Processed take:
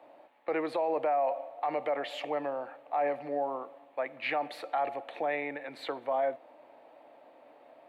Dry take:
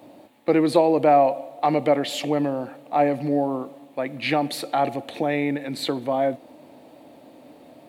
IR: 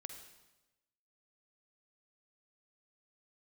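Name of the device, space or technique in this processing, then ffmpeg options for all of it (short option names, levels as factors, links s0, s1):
DJ mixer with the lows and highs turned down: -filter_complex "[0:a]acrossover=split=500 2600:gain=0.0794 1 0.1[s0][s1][s2];[s0][s1][s2]amix=inputs=3:normalize=0,alimiter=limit=0.112:level=0:latency=1:release=34,volume=0.75"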